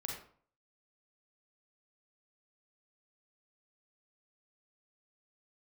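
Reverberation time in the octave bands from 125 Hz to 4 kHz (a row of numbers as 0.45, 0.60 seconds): 0.60, 0.55, 0.50, 0.50, 0.40, 0.35 seconds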